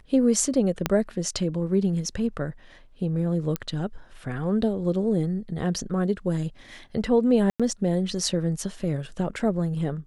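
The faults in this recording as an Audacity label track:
0.860000	0.860000	click −7 dBFS
3.560000	3.560000	click −11 dBFS
7.500000	7.600000	drop-out 96 ms

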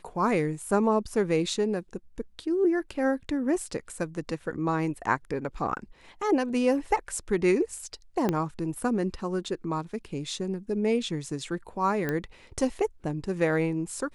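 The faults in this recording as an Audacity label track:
8.290000	8.290000	click −13 dBFS
12.090000	12.090000	click −16 dBFS

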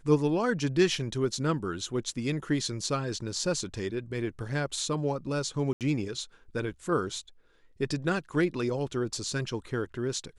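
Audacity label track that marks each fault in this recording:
5.730000	5.810000	drop-out 78 ms

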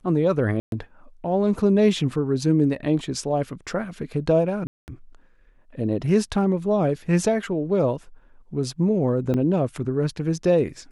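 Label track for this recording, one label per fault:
0.600000	0.720000	drop-out 122 ms
4.670000	4.880000	drop-out 209 ms
9.340000	9.340000	drop-out 3.3 ms

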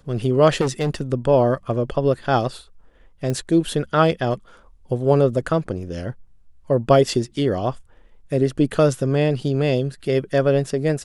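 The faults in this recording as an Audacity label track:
0.600000	1.020000	clipping −17 dBFS
3.300000	3.300000	click −13 dBFS

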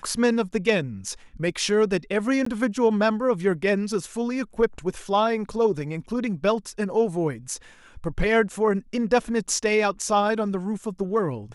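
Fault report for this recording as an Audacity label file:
2.450000	2.460000	drop-out 14 ms

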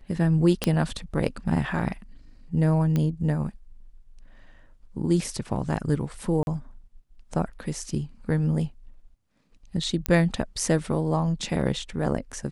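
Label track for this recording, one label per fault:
0.640000	0.640000	click −8 dBFS
2.960000	2.960000	click −14 dBFS
6.430000	6.470000	drop-out 41 ms
10.060000	10.060000	click −9 dBFS

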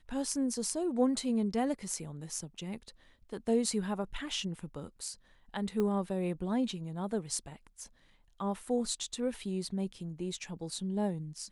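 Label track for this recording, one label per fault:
5.800000	5.800000	click −21 dBFS

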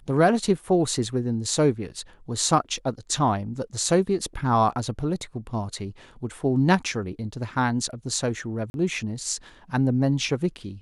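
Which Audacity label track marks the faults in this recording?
8.700000	8.740000	drop-out 41 ms

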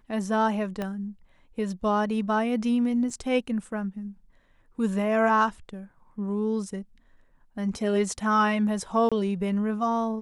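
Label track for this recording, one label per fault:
0.820000	0.820000	click −18 dBFS
3.100000	3.100000	drop-out 4 ms
9.090000	9.120000	drop-out 26 ms

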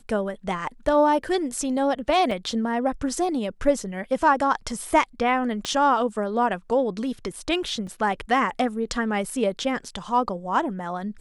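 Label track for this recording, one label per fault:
2.310000	2.310000	drop-out 3.4 ms
5.650000	5.650000	click −13 dBFS
7.870000	7.870000	drop-out 3.5 ms

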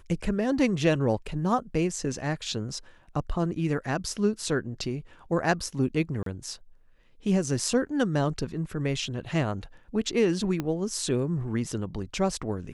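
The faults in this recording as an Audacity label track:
6.230000	6.260000	drop-out 33 ms
10.600000	10.600000	click −16 dBFS

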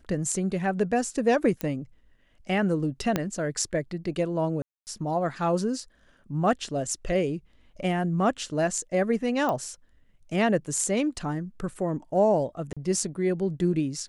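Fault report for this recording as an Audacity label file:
1.610000	1.610000	click −14 dBFS
3.160000	3.160000	click −10 dBFS
4.620000	4.870000	drop-out 249 ms
9.490000	9.490000	click −16 dBFS
12.730000	12.770000	drop-out 36 ms

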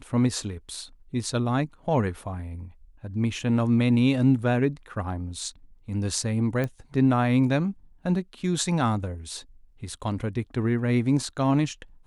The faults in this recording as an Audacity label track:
6.640000	6.640000	click −17 dBFS

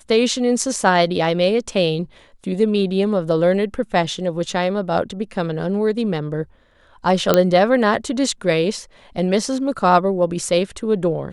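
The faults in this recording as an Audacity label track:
7.340000	7.340000	click 0 dBFS

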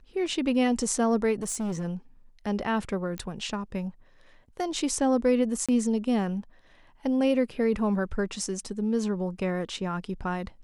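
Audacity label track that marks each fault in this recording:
1.420000	1.850000	clipping −27 dBFS
3.180000	3.180000	click −21 dBFS
5.660000	5.690000	drop-out 26 ms

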